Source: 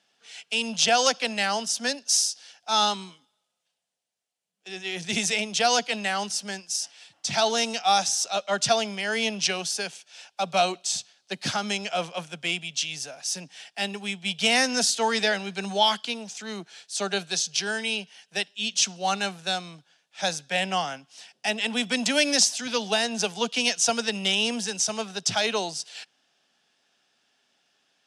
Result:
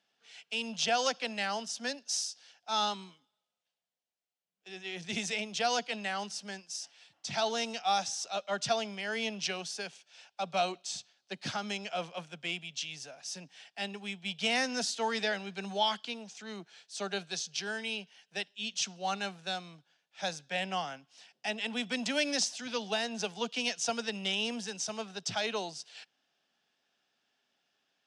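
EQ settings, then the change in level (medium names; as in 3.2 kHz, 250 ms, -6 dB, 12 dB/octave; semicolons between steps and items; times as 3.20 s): distance through air 59 m; -7.5 dB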